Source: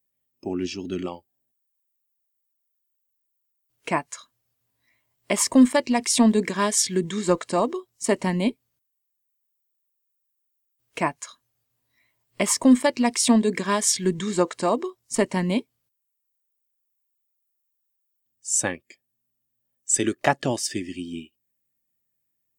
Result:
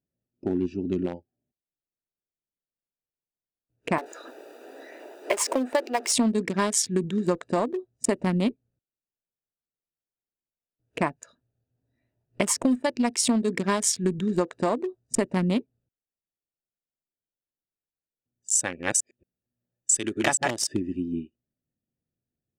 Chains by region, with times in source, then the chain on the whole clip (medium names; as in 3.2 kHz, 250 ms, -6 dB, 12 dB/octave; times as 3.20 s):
3.98–6.12 s: jump at every zero crossing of -24.5 dBFS + steep high-pass 340 Hz + treble shelf 2.9 kHz -5.5 dB
18.55–20.64 s: chunks repeated in reverse 228 ms, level -2 dB + tilt shelf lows -4.5 dB, about 890 Hz
whole clip: local Wiener filter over 41 samples; compression 5:1, threshold -26 dBFS; trim +5 dB